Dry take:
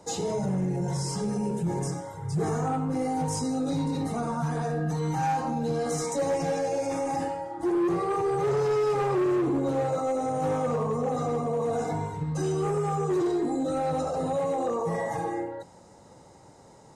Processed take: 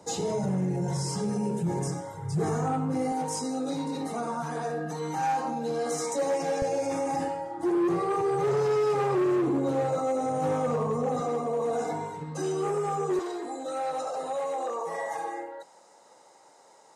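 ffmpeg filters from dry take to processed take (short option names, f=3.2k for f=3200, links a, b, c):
-af "asetnsamples=n=441:p=0,asendcmd='3.12 highpass f 270;6.62 highpass f 110;11.2 highpass f 240;13.19 highpass f 580',highpass=78"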